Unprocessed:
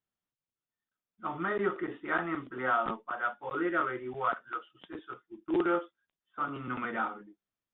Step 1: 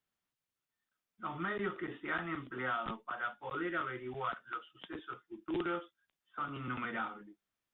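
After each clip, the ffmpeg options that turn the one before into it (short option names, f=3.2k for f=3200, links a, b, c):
-filter_complex "[0:a]equalizer=f=2k:t=o:w=2.4:g=4,acrossover=split=190|3000[a][b][c];[b]acompressor=threshold=-46dB:ratio=2[d];[a][d][c]amix=inputs=3:normalize=0,volume=1dB"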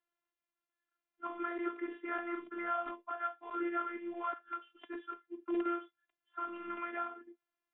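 -filter_complex "[0:a]acrossover=split=2900[a][b];[b]acompressor=threshold=-59dB:ratio=4:attack=1:release=60[c];[a][c]amix=inputs=2:normalize=0,afftfilt=real='hypot(re,im)*cos(PI*b)':imag='0':win_size=512:overlap=0.75,acrossover=split=230 3000:gain=0.2 1 0.0708[d][e][f];[d][e][f]amix=inputs=3:normalize=0,volume=4dB"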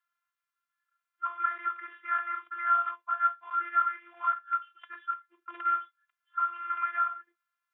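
-af "highpass=f=1.3k:t=q:w=4.1"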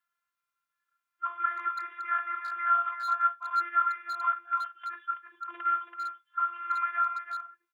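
-filter_complex "[0:a]asplit=2[a][b];[b]adelay=330,highpass=300,lowpass=3.4k,asoftclip=type=hard:threshold=-23.5dB,volume=-7dB[c];[a][c]amix=inputs=2:normalize=0"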